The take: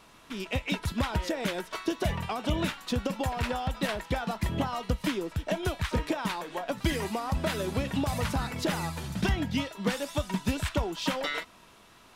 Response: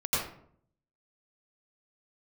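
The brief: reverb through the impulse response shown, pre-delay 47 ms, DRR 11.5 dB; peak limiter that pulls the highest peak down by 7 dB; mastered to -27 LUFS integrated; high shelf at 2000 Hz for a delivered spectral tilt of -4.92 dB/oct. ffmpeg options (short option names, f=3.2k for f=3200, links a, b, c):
-filter_complex "[0:a]highshelf=f=2k:g=-5,alimiter=level_in=0.5dB:limit=-24dB:level=0:latency=1,volume=-0.5dB,asplit=2[a][b];[1:a]atrim=start_sample=2205,adelay=47[c];[b][c]afir=irnorm=-1:irlink=0,volume=-20.5dB[d];[a][d]amix=inputs=2:normalize=0,volume=7.5dB"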